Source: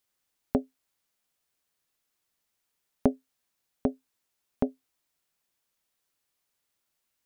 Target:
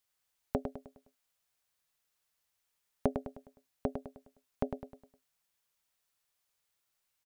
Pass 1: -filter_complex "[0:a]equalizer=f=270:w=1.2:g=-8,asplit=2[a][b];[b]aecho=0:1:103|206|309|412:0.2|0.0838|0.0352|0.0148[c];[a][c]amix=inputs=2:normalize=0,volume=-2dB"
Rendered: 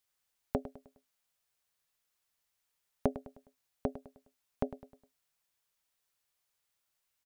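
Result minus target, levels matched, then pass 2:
echo-to-direct -7 dB
-filter_complex "[0:a]equalizer=f=270:w=1.2:g=-8,asplit=2[a][b];[b]aecho=0:1:103|206|309|412|515:0.447|0.188|0.0788|0.0331|0.0139[c];[a][c]amix=inputs=2:normalize=0,volume=-2dB"

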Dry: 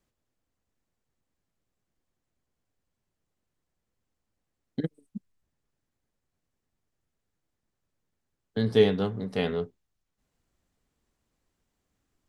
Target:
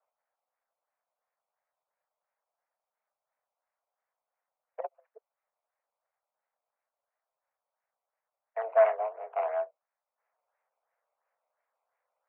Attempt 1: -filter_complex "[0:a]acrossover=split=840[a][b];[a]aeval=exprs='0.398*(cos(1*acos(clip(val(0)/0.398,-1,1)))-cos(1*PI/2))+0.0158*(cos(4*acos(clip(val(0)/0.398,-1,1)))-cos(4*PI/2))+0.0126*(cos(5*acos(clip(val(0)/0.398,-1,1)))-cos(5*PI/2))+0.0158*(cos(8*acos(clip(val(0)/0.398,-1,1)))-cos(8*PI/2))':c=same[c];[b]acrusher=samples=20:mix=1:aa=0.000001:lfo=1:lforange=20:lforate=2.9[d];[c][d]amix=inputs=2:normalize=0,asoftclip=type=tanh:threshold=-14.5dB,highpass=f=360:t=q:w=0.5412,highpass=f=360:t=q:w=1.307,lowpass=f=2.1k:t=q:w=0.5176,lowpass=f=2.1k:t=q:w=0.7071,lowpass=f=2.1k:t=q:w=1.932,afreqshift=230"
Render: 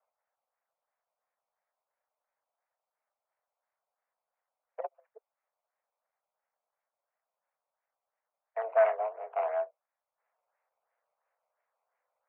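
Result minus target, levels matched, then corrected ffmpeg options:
soft clip: distortion +14 dB
-filter_complex "[0:a]acrossover=split=840[a][b];[a]aeval=exprs='0.398*(cos(1*acos(clip(val(0)/0.398,-1,1)))-cos(1*PI/2))+0.0158*(cos(4*acos(clip(val(0)/0.398,-1,1)))-cos(4*PI/2))+0.0126*(cos(5*acos(clip(val(0)/0.398,-1,1)))-cos(5*PI/2))+0.0158*(cos(8*acos(clip(val(0)/0.398,-1,1)))-cos(8*PI/2))':c=same[c];[b]acrusher=samples=20:mix=1:aa=0.000001:lfo=1:lforange=20:lforate=2.9[d];[c][d]amix=inputs=2:normalize=0,asoftclip=type=tanh:threshold=-6dB,highpass=f=360:t=q:w=0.5412,highpass=f=360:t=q:w=1.307,lowpass=f=2.1k:t=q:w=0.5176,lowpass=f=2.1k:t=q:w=0.7071,lowpass=f=2.1k:t=q:w=1.932,afreqshift=230"

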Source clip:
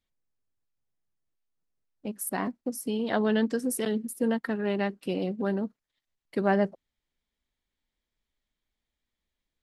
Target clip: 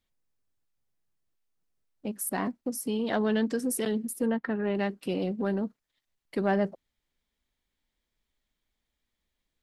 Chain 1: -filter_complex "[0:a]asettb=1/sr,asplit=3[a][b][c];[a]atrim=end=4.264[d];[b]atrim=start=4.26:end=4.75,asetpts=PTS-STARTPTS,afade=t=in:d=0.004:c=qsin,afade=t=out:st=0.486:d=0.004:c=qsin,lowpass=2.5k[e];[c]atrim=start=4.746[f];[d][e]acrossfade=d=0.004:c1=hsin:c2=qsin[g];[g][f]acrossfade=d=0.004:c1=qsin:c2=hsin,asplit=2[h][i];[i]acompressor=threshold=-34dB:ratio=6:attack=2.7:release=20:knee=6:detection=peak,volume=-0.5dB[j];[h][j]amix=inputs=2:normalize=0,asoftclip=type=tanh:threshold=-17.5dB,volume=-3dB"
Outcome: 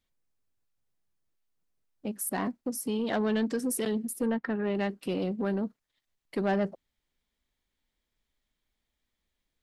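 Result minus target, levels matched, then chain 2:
soft clip: distortion +9 dB
-filter_complex "[0:a]asettb=1/sr,asplit=3[a][b][c];[a]atrim=end=4.264[d];[b]atrim=start=4.26:end=4.75,asetpts=PTS-STARTPTS,afade=t=in:d=0.004:c=qsin,afade=t=out:st=0.486:d=0.004:c=qsin,lowpass=2.5k[e];[c]atrim=start=4.746[f];[d][e]acrossfade=d=0.004:c1=hsin:c2=qsin[g];[g][f]acrossfade=d=0.004:c1=qsin:c2=hsin,asplit=2[h][i];[i]acompressor=threshold=-34dB:ratio=6:attack=2.7:release=20:knee=6:detection=peak,volume=-0.5dB[j];[h][j]amix=inputs=2:normalize=0,asoftclip=type=tanh:threshold=-11.5dB,volume=-3dB"

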